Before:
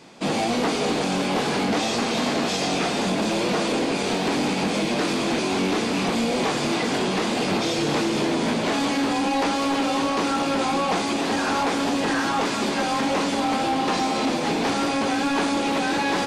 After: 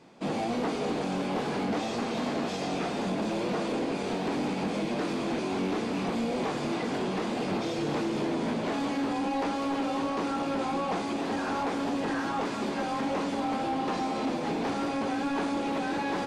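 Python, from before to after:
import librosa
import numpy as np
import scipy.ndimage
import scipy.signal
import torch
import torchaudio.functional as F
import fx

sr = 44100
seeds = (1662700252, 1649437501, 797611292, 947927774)

y = fx.high_shelf(x, sr, hz=2100.0, db=-9.0)
y = F.gain(torch.from_numpy(y), -6.0).numpy()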